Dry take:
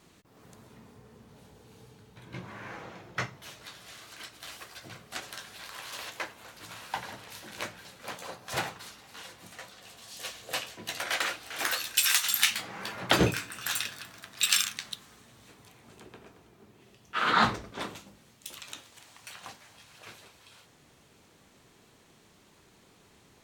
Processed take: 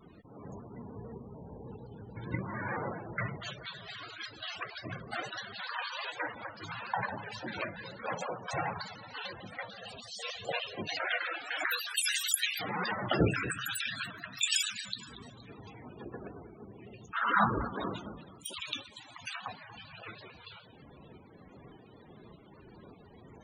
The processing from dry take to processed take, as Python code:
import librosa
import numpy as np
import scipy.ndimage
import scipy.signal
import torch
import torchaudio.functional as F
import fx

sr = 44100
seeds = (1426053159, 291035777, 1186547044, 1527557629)

p1 = fx.over_compress(x, sr, threshold_db=-40.0, ratio=-1.0)
p2 = x + (p1 * librosa.db_to_amplitude(2.0))
p3 = fx.tremolo_shape(p2, sr, shape='saw_up', hz=1.7, depth_pct=45)
p4 = p3 + fx.echo_feedback(p3, sr, ms=235, feedback_pct=42, wet_db=-14, dry=0)
p5 = fx.spec_topn(p4, sr, count=32)
y = fx.vibrato_shape(p5, sr, shape='square', rate_hz=6.7, depth_cents=100.0)